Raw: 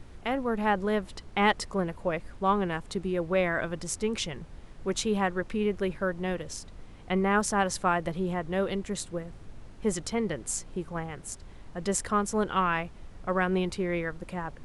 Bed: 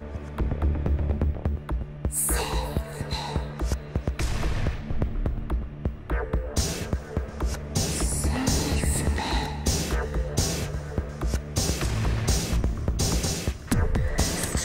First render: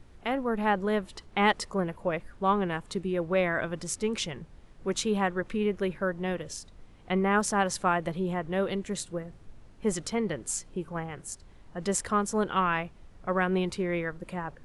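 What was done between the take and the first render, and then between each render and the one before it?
noise print and reduce 6 dB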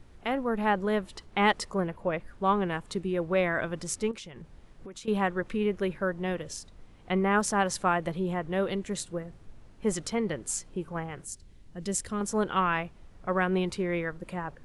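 1.87–2.28 high shelf 6300 Hz -7.5 dB; 4.11–5.08 compressor 16:1, threshold -39 dBFS; 11.25–12.21 bell 1000 Hz -12 dB 2.2 oct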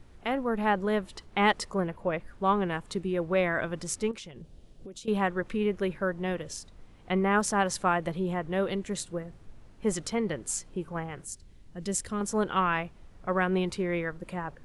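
4.31–5.08 band shelf 1400 Hz -10.5 dB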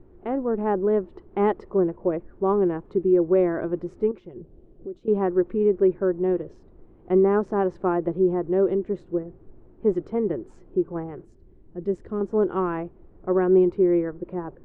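LPF 1000 Hz 12 dB/oct; bell 360 Hz +14 dB 0.63 oct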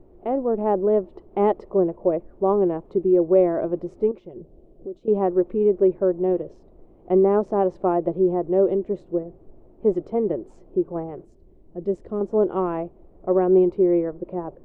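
fifteen-band EQ 100 Hz -4 dB, 630 Hz +8 dB, 1600 Hz -8 dB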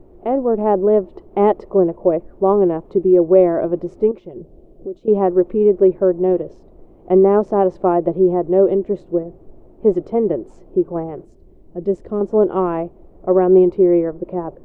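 gain +5.5 dB

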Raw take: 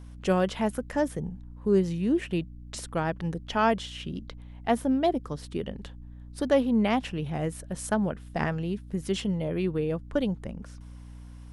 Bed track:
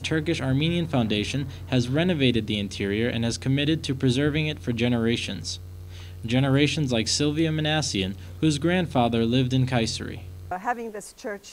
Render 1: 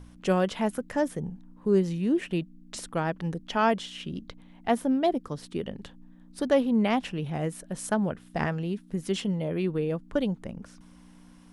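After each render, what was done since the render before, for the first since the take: de-hum 60 Hz, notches 2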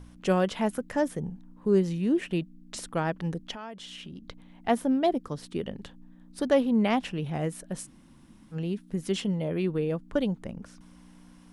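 3.51–4.24 compressor 5:1, threshold -39 dBFS; 7.84–8.54 room tone, crossfade 0.06 s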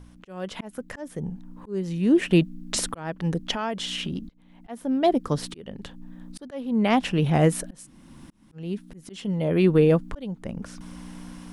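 AGC gain up to 12.5 dB; auto swell 0.736 s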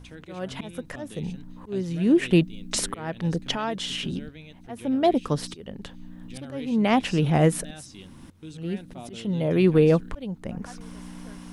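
add bed track -20 dB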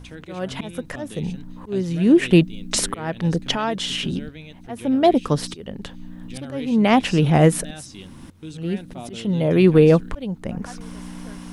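gain +5 dB

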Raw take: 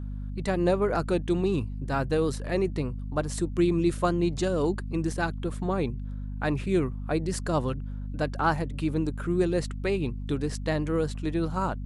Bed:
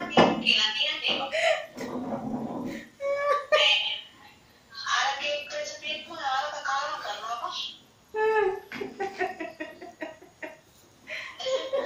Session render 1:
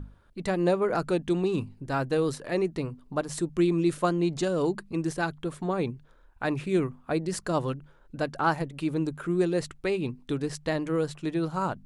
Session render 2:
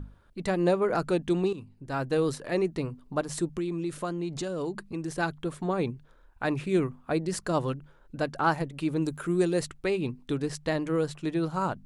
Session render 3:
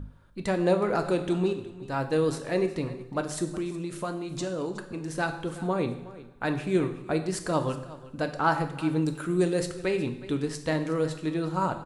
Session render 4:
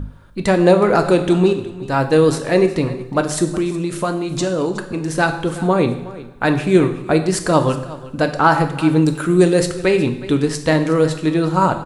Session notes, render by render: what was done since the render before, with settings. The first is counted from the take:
notches 50/100/150/200/250 Hz
1.53–2.18 fade in, from -15 dB; 3.58–5.17 compressor 2.5:1, threshold -31 dBFS; 9.01–9.64 high shelf 5200 Hz -> 8600 Hz +11 dB
echo 0.367 s -18 dB; two-slope reverb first 0.75 s, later 3.3 s, from -26 dB, DRR 6.5 dB
gain +12 dB; limiter -1 dBFS, peak gain reduction 2.5 dB

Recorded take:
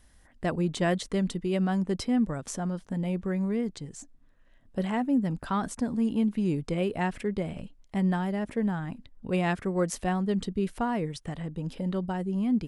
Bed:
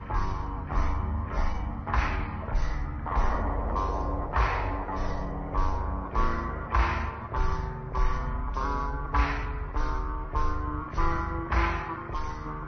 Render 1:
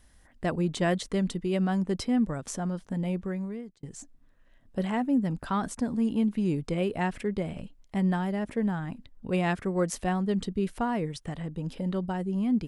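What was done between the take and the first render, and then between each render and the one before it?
3.11–3.83 fade out linear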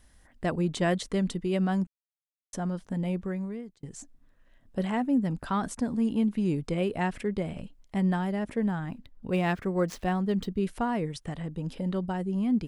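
1.87–2.53 mute; 8.88–10.59 median filter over 5 samples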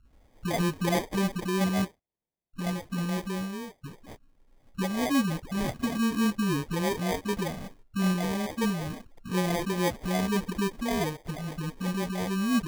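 dispersion highs, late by 0.128 s, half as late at 620 Hz; sample-and-hold 32×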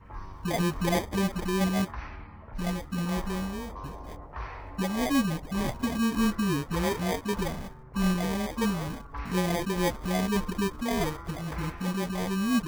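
add bed -12.5 dB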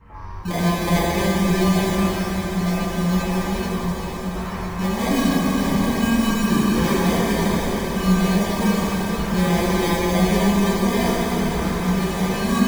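diffused feedback echo 0.944 s, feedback 61%, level -10 dB; plate-style reverb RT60 4.3 s, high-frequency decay 1×, DRR -8 dB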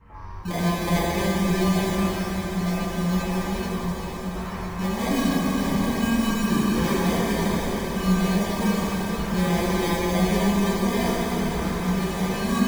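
gain -3.5 dB

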